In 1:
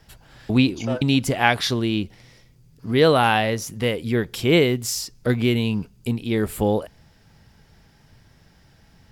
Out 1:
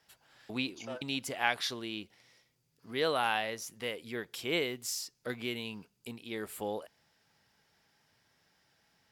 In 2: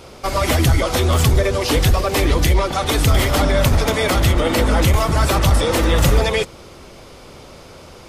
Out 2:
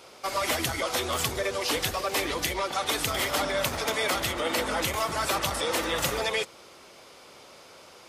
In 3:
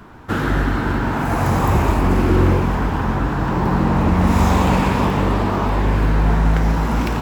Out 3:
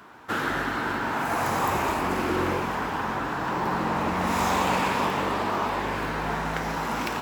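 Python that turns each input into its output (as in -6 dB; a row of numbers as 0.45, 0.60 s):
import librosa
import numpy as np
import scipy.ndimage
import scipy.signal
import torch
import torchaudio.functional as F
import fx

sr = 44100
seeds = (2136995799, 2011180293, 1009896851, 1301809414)

y = fx.highpass(x, sr, hz=700.0, slope=6)
y = y * 10.0 ** (-12 / 20.0) / np.max(np.abs(y))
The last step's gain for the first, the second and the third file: -10.0, -6.0, -1.5 dB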